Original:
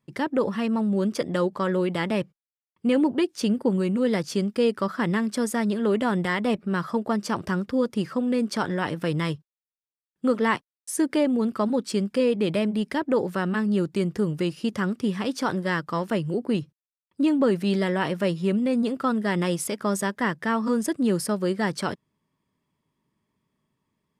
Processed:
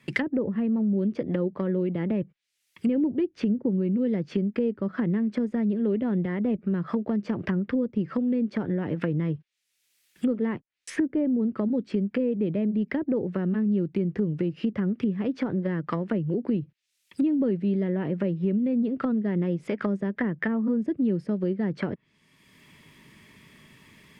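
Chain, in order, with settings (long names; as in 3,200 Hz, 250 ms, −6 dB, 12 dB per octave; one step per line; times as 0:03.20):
treble cut that deepens with the level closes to 430 Hz, closed at −22.5 dBFS
high shelf with overshoot 1,500 Hz +11.5 dB, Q 1.5
multiband upward and downward compressor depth 70%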